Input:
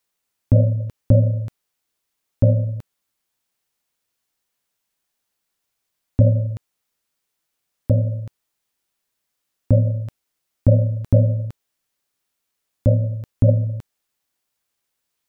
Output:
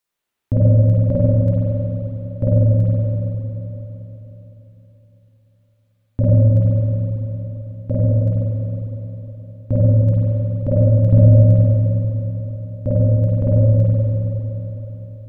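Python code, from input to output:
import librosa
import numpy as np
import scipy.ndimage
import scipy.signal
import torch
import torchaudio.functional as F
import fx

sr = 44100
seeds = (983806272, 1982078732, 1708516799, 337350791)

y = fx.rev_spring(x, sr, rt60_s=3.9, pass_ms=(46, 51), chirp_ms=25, drr_db=-8.0)
y = y * 10.0 ** (-5.0 / 20.0)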